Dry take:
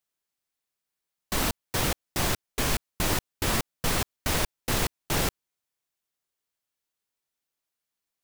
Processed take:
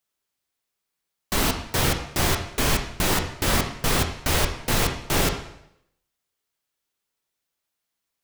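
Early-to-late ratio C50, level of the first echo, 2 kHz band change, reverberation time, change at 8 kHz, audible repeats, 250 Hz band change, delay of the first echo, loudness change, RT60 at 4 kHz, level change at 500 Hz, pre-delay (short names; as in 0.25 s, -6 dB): 7.5 dB, none, +5.0 dB, 0.80 s, +4.0 dB, none, +5.0 dB, none, +4.5 dB, 0.70 s, +5.0 dB, 7 ms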